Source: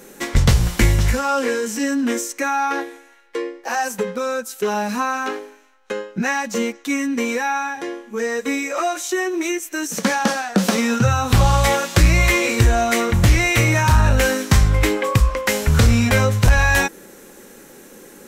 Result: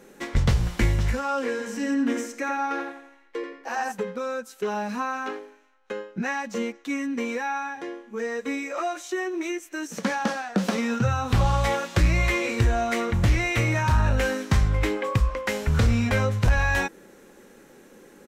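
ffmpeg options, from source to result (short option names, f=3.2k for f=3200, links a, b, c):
-filter_complex "[0:a]asplit=3[a][b][c];[a]afade=t=out:st=1.58:d=0.02[d];[b]asplit=2[e][f];[f]adelay=87,lowpass=f=3.3k:p=1,volume=-4dB,asplit=2[g][h];[h]adelay=87,lowpass=f=3.3k:p=1,volume=0.38,asplit=2[i][j];[j]adelay=87,lowpass=f=3.3k:p=1,volume=0.38,asplit=2[k][l];[l]adelay=87,lowpass=f=3.3k:p=1,volume=0.38,asplit=2[m][n];[n]adelay=87,lowpass=f=3.3k:p=1,volume=0.38[o];[e][g][i][k][m][o]amix=inputs=6:normalize=0,afade=t=in:st=1.58:d=0.02,afade=t=out:st=3.91:d=0.02[p];[c]afade=t=in:st=3.91:d=0.02[q];[d][p][q]amix=inputs=3:normalize=0,highshelf=f=6.1k:g=-12,volume=-6.5dB"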